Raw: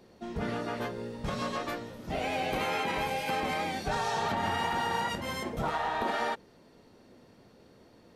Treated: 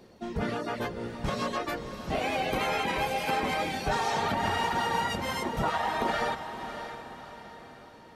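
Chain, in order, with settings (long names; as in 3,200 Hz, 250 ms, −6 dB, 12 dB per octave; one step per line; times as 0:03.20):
reverb reduction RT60 0.67 s
feedback delay with all-pass diffusion 602 ms, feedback 46%, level −9.5 dB
level +3.5 dB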